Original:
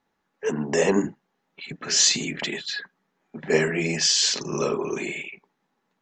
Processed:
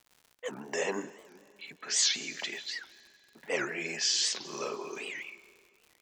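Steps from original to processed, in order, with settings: frequency weighting A; expander -39 dBFS; crackle 110 per s -38 dBFS; reverberation RT60 2.2 s, pre-delay 132 ms, DRR 17.5 dB; warped record 78 rpm, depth 250 cents; trim -8 dB

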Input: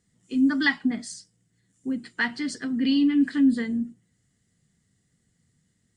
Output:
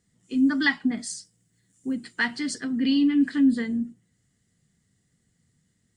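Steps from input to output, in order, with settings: 0.97–2.61 s: treble shelf 6.6 kHz +8 dB

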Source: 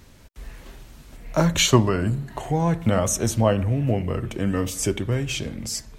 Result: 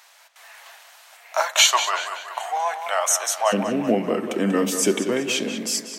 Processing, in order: Chebyshev high-pass 700 Hz, order 4, from 3.52 s 210 Hz; tape echo 190 ms, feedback 54%, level -8.5 dB, low-pass 5.5 kHz; trim +5.5 dB

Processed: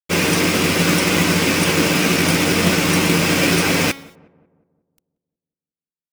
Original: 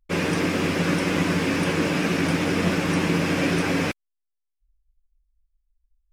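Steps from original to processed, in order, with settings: treble shelf 2.7 kHz +9.5 dB; band-stop 1.7 kHz, Q 14; de-hum 276.1 Hz, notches 23; companded quantiser 4-bit; on a send: filtered feedback delay 181 ms, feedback 52%, low-pass 1.3 kHz, level -23 dB; on the sum: trim +5 dB

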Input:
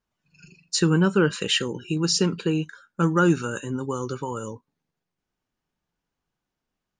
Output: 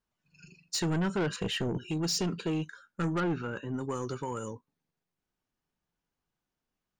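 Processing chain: 1.36–1.78 s: tilt EQ -3.5 dB/octave; saturation -21.5 dBFS, distortion -9 dB; 3.20–3.74 s: distance through air 270 m; trim -4 dB

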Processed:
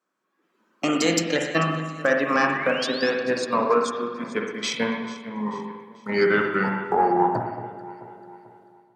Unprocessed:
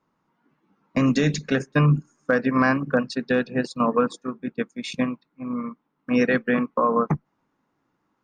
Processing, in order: gliding tape speed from 118% -> 66%; tone controls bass -11 dB, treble +8 dB; on a send: echo whose repeats swap between lows and highs 220 ms, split 1.3 kHz, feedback 65%, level -13 dB; on the sum: level rider gain up to 11 dB; painted sound rise, 2.53–3.10 s, 1.8–5.6 kHz -28 dBFS; Chebyshev shaper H 2 -8 dB, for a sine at 7.5 dBFS; high-pass 120 Hz; spring tank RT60 1.1 s, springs 42/57 ms, chirp 75 ms, DRR 2 dB; trim -7.5 dB

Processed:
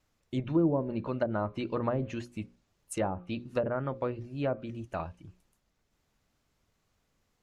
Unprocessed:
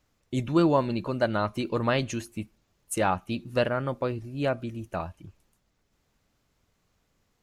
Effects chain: hum notches 60/120/180/240/300/360/420/480/540 Hz; wow and flutter 29 cents; low-pass that closes with the level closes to 540 Hz, closed at -20 dBFS; trim -3 dB

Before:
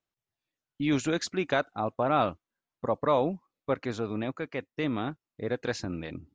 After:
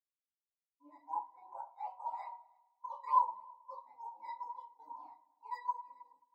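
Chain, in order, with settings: companding laws mixed up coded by mu; compression 6:1, threshold -26 dBFS, peak gain reduction 7 dB; half-wave rectifier; band-pass filter 950 Hz, Q 11; decimation with a swept rate 10×, swing 100% 2.4 Hz; multi-head delay 106 ms, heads all three, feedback 58%, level -16 dB; simulated room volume 130 m³, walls mixed, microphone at 1.9 m; spectral contrast expander 2.5:1; trim +11.5 dB

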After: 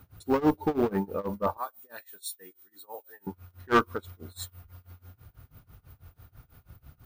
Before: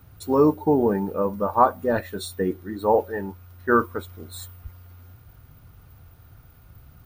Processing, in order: 1.57–3.27 s: differentiator; one-sided clip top -18 dBFS; tremolo 6.1 Hz, depth 94%; dynamic bell 4.2 kHz, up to +4 dB, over -48 dBFS, Q 0.7

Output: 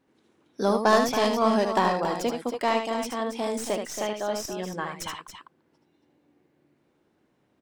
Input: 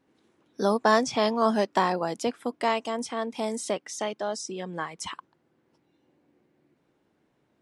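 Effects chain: tracing distortion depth 0.049 ms; loudspeakers at several distances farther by 26 m -6 dB, 95 m -9 dB

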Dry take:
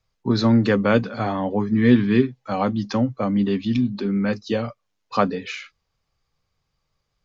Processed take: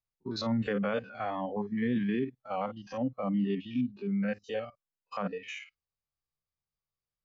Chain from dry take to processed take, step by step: spectrogram pixelated in time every 50 ms; spectral noise reduction 14 dB; peak limiter -15.5 dBFS, peak gain reduction 9.5 dB; trim -6.5 dB

